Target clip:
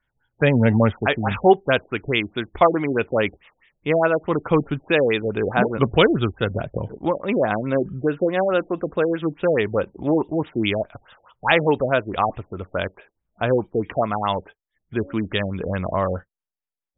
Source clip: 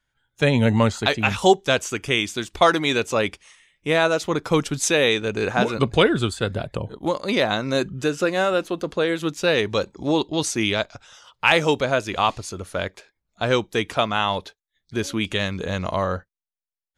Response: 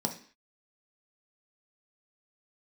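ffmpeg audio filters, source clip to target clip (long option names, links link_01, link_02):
-af "afftfilt=real='re*lt(b*sr/1024,760*pow(3800/760,0.5+0.5*sin(2*PI*4.7*pts/sr)))':imag='im*lt(b*sr/1024,760*pow(3800/760,0.5+0.5*sin(2*PI*4.7*pts/sr)))':win_size=1024:overlap=0.75,volume=1.5dB"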